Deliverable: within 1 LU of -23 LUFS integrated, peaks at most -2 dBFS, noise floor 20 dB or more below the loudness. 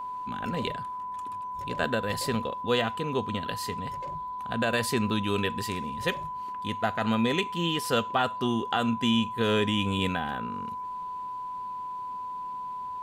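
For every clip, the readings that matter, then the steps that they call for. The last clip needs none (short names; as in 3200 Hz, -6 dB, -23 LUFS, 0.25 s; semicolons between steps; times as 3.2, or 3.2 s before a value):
steady tone 1000 Hz; tone level -33 dBFS; loudness -29.5 LUFS; peak -13.0 dBFS; loudness target -23.0 LUFS
-> notch 1000 Hz, Q 30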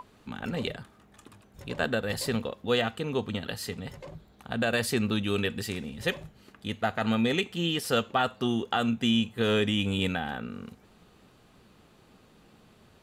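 steady tone none; loudness -29.0 LUFS; peak -14.0 dBFS; loudness target -23.0 LUFS
-> gain +6 dB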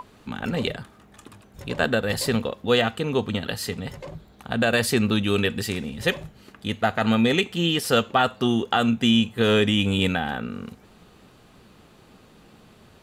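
loudness -23.0 LUFS; peak -8.0 dBFS; noise floor -53 dBFS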